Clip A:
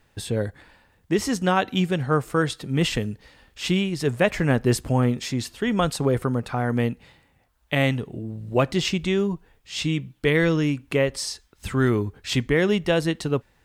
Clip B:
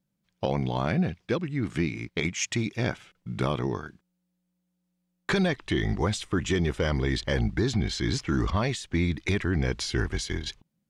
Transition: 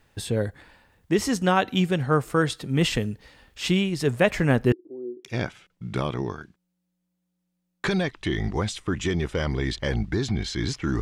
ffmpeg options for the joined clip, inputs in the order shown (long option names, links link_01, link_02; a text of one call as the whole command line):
ffmpeg -i cue0.wav -i cue1.wav -filter_complex "[0:a]asettb=1/sr,asplit=3[link_01][link_02][link_03];[link_01]atrim=end=4.724[link_04];[link_02]atrim=start=4.72:end=5.25,asetpts=PTS-STARTPTS,afade=type=in:duration=0.004:curve=qsin,afade=type=out:start_time=0.526:duration=0.004:curve=qsin,asuperpass=centerf=350:order=4:qfactor=4.9[link_05];[link_03]atrim=start=5.246[link_06];[link_04][link_05]acrossfade=duration=0.004:curve1=hsin:curve2=qsin[link_07];[link_07][link_06]acrossfade=duration=0.004:curve1=qsin:curve2=hsin,apad=whole_dur=11.01,atrim=end=11.01,atrim=end=5.252[link_08];[1:a]atrim=start=2.698:end=8.46[link_09];[link_08][link_09]acrossfade=duration=0.004:curve1=hsin:curve2=hsin" out.wav